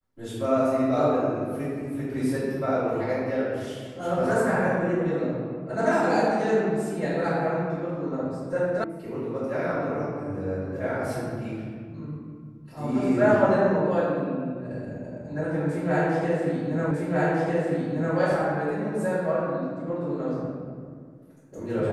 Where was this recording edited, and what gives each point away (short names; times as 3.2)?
8.84 sound cut off
16.91 repeat of the last 1.25 s